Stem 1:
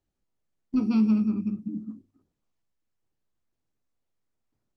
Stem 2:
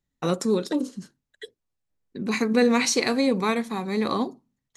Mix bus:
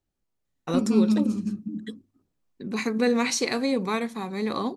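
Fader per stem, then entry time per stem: 0.0, -3.0 dB; 0.00, 0.45 s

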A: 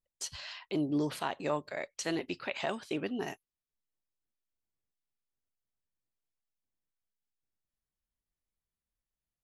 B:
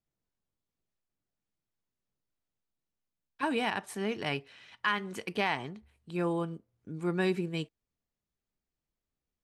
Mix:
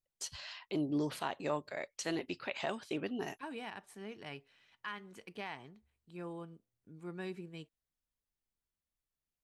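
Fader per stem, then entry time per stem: -3.0, -13.5 dB; 0.00, 0.00 s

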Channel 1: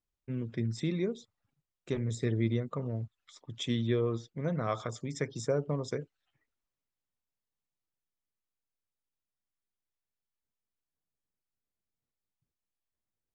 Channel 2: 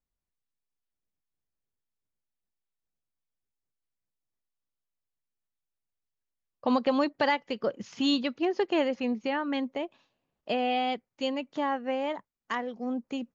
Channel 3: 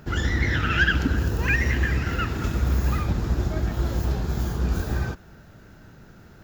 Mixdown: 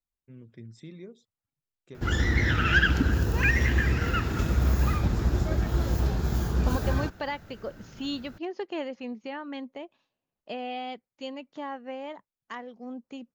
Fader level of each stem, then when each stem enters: -12.5, -7.0, -1.0 dB; 0.00, 0.00, 1.95 s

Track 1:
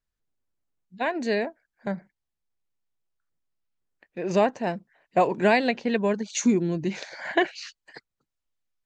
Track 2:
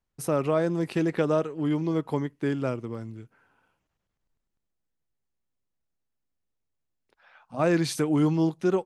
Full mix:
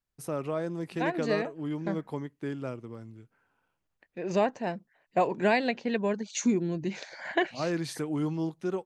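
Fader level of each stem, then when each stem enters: -4.5, -7.5 dB; 0.00, 0.00 s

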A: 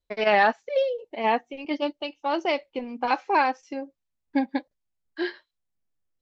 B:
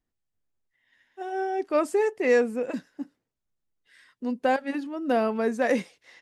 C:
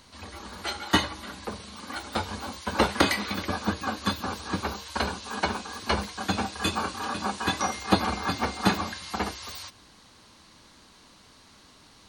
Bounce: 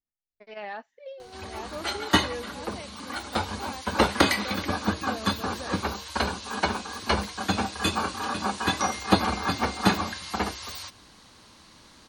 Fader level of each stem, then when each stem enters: -18.0, -15.5, +1.5 dB; 0.30, 0.00, 1.20 s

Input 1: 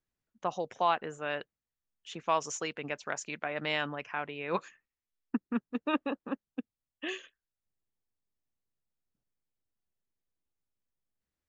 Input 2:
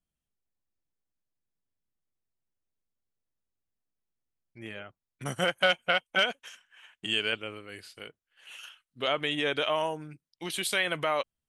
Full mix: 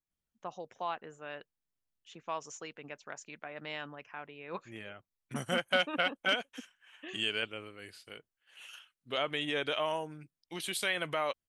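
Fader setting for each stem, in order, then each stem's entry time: -9.0, -4.5 dB; 0.00, 0.10 s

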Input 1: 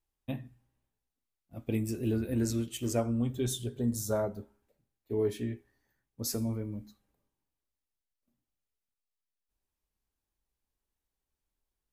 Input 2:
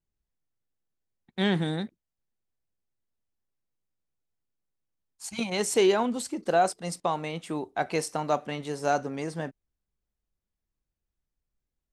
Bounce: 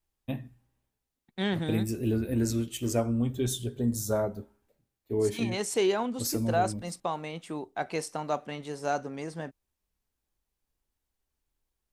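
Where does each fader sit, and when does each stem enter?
+2.5, -4.0 dB; 0.00, 0.00 s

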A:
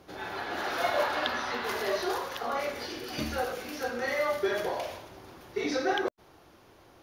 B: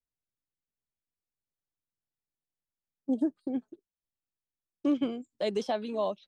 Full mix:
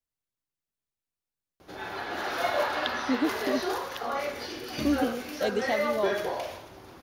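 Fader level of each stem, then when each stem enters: +0.5, +1.0 dB; 1.60, 0.00 s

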